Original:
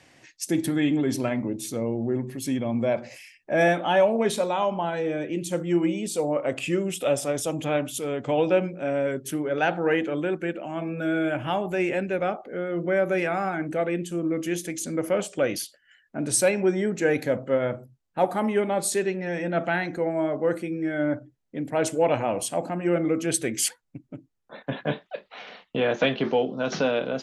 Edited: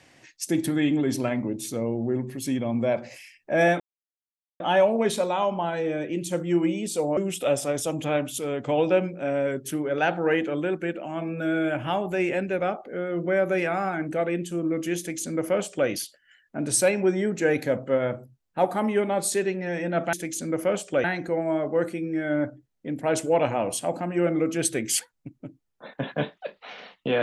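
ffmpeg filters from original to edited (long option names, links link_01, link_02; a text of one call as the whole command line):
ffmpeg -i in.wav -filter_complex "[0:a]asplit=5[link_01][link_02][link_03][link_04][link_05];[link_01]atrim=end=3.8,asetpts=PTS-STARTPTS,afade=type=out:start_time=3.796:duration=0.004:curve=hsin,apad=pad_dur=0.8[link_06];[link_02]atrim=start=3.8:end=6.372,asetpts=PTS-STARTPTS,afade=type=in:duration=0.004:curve=hsin[link_07];[link_03]atrim=start=6.768:end=19.732[link_08];[link_04]atrim=start=14.578:end=15.492[link_09];[link_05]atrim=start=19.728[link_10];[link_06][link_07]concat=n=2:v=0:a=1[link_11];[link_11][link_08]acrossfade=duration=0.004:curve1=hsin:curve2=hsin[link_12];[link_12][link_09]acrossfade=duration=0.004:curve1=hsin:curve2=hsin[link_13];[link_13][link_10]acrossfade=duration=0.004:curve1=hsin:curve2=hsin" out.wav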